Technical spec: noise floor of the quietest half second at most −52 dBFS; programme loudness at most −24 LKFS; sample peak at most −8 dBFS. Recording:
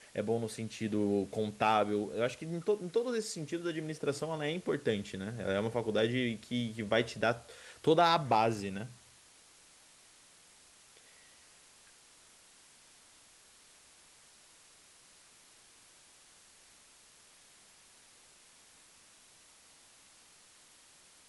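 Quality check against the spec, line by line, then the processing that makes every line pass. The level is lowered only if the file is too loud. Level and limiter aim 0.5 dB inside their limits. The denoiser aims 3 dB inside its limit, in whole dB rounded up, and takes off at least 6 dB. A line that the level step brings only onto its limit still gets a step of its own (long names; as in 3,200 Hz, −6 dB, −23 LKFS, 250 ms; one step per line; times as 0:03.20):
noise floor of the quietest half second −61 dBFS: in spec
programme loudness −33.0 LKFS: in spec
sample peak −14.0 dBFS: in spec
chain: no processing needed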